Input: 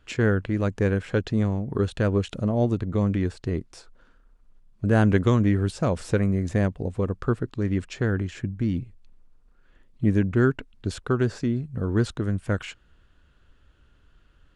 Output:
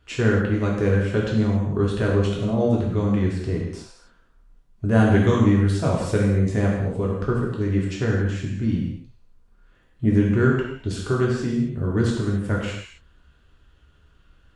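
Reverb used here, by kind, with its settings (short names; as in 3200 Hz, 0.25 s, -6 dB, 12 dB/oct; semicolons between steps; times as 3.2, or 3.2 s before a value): non-linear reverb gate 0.3 s falling, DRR -3.5 dB; gain -2 dB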